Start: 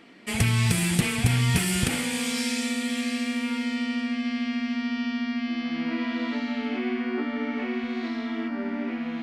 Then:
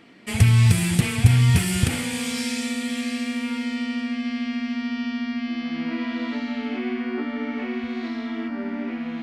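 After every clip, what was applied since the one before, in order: bell 95 Hz +11.5 dB 0.92 oct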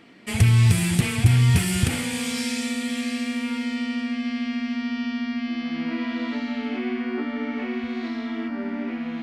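soft clip -6 dBFS, distortion -22 dB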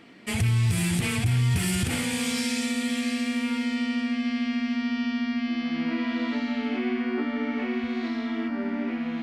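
limiter -17 dBFS, peak gain reduction 9.5 dB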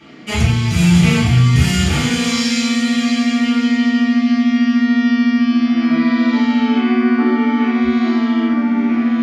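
reverb RT60 0.60 s, pre-delay 3 ms, DRR -10 dB; gain -3.5 dB

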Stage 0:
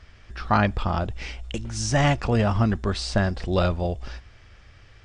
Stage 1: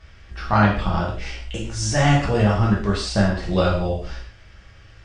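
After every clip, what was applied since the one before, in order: reverb, pre-delay 3 ms, DRR -4.5 dB; gain -2.5 dB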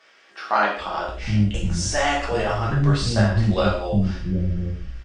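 bands offset in time highs, lows 0.77 s, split 320 Hz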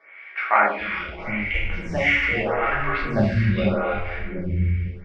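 synth low-pass 2200 Hz, resonance Q 13; non-linear reverb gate 0.33 s flat, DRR 4 dB; photocell phaser 0.8 Hz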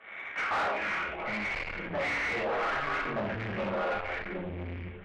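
CVSD 16 kbps; soft clip -27.5 dBFS, distortion -7 dB; overdrive pedal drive 18 dB, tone 1600 Hz, clips at -9.5 dBFS; gain -7 dB

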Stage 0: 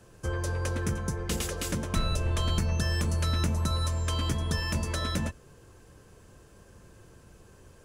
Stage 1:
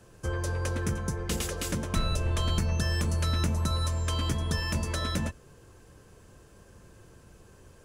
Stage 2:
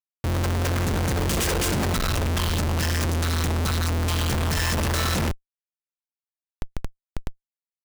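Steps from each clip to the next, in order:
nothing audible
opening faded in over 1.02 s; Schmitt trigger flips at -42.5 dBFS; gain +7.5 dB

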